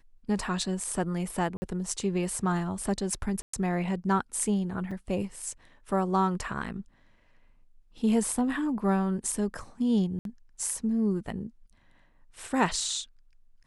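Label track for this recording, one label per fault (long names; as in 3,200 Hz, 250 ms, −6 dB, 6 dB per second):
1.570000	1.620000	drop-out 50 ms
3.420000	3.530000	drop-out 114 ms
4.910000	4.910000	drop-out 4.9 ms
10.190000	10.250000	drop-out 62 ms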